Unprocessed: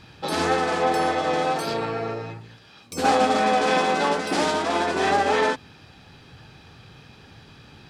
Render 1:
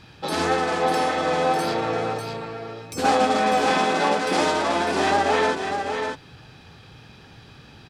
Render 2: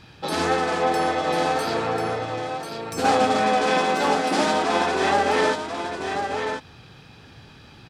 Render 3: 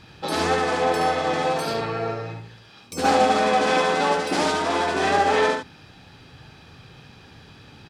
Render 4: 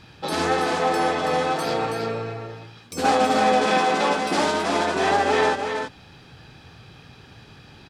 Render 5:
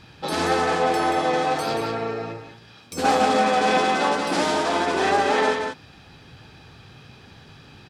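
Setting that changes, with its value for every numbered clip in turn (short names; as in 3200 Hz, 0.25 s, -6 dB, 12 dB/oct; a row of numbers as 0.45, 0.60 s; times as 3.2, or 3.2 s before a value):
echo, time: 597, 1041, 72, 326, 180 ms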